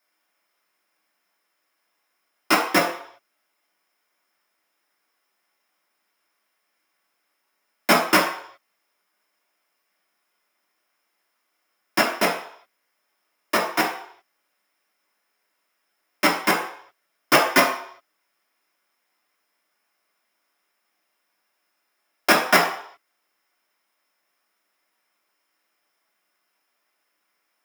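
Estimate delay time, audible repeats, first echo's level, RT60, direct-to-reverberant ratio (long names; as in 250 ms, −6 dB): no echo audible, no echo audible, no echo audible, 0.65 s, −4.0 dB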